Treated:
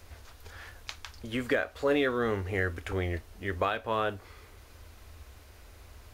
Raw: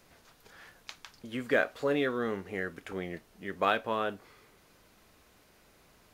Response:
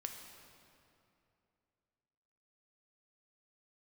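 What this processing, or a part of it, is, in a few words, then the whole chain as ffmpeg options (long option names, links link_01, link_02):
car stereo with a boomy subwoofer: -af "lowshelf=frequency=110:width_type=q:width=3:gain=10.5,alimiter=limit=-21.5dB:level=0:latency=1:release=435,volume=5.5dB"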